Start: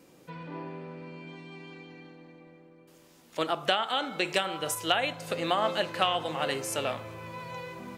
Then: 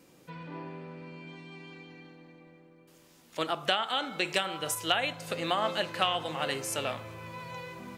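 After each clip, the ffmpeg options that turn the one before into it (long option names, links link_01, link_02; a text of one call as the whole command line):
ffmpeg -i in.wav -af "equalizer=frequency=490:width=0.52:gain=-3" out.wav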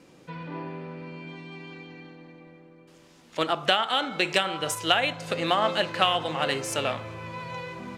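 ffmpeg -i in.wav -af "adynamicsmooth=sensitivity=5.5:basefreq=7700,volume=5.5dB" out.wav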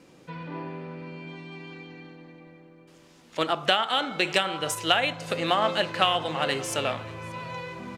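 ffmpeg -i in.wav -af "aecho=1:1:582:0.0708" out.wav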